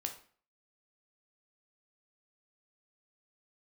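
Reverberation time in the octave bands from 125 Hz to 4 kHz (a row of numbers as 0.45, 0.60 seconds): 0.45, 0.50, 0.45, 0.45, 0.45, 0.40 seconds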